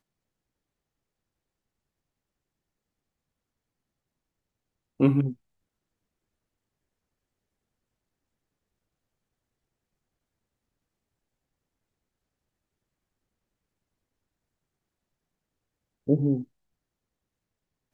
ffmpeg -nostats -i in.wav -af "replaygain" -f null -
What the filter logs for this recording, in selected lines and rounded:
track_gain = +53.7 dB
track_peak = 0.299